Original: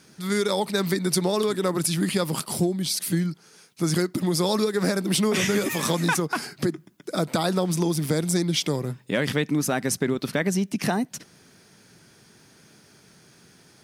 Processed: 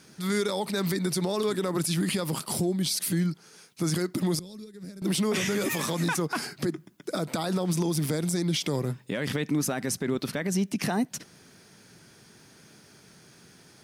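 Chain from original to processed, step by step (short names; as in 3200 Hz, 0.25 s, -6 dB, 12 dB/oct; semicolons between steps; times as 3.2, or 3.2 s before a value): 4.39–5.02 passive tone stack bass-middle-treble 10-0-1; limiter -18.5 dBFS, peak gain reduction 8 dB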